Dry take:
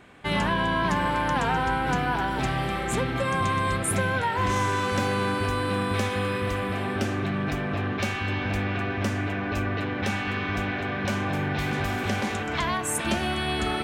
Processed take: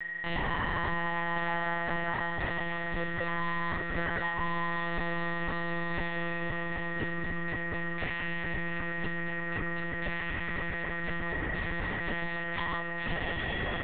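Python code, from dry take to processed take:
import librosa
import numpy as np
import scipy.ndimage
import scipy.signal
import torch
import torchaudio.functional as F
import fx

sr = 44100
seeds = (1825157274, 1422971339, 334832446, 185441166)

y = x + 10.0 ** (-27.0 / 20.0) * np.sin(2.0 * np.pi * 1900.0 * np.arange(len(x)) / sr)
y = fx.lpc_monotone(y, sr, seeds[0], pitch_hz=170.0, order=10)
y = F.gain(torch.from_numpy(y), -7.5).numpy()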